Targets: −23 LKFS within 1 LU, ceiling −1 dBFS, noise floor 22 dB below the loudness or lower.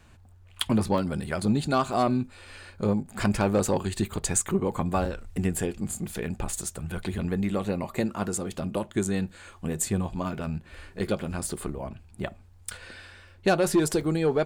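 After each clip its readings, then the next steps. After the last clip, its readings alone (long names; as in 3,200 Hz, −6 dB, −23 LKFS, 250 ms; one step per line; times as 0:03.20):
number of dropouts 5; longest dropout 2.8 ms; integrated loudness −28.5 LKFS; sample peak −10.5 dBFS; target loudness −23.0 LKFS
→ repair the gap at 0:00.98/0:01.93/0:05.05/0:10.32/0:14.01, 2.8 ms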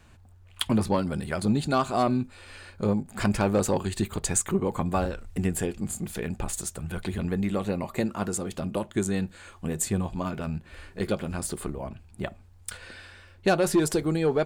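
number of dropouts 0; integrated loudness −28.5 LKFS; sample peak −10.5 dBFS; target loudness −23.0 LKFS
→ level +5.5 dB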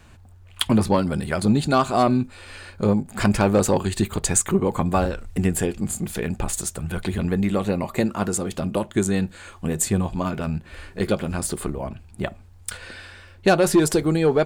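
integrated loudness −23.0 LKFS; sample peak −5.0 dBFS; background noise floor −47 dBFS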